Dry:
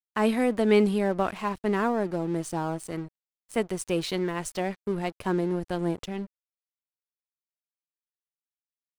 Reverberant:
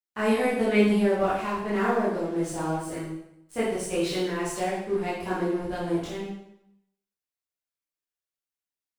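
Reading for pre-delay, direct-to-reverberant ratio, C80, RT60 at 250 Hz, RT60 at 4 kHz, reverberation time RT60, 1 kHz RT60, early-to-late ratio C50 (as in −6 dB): 7 ms, −10.0 dB, 5.0 dB, 0.80 s, 0.70 s, 0.80 s, 0.80 s, 1.0 dB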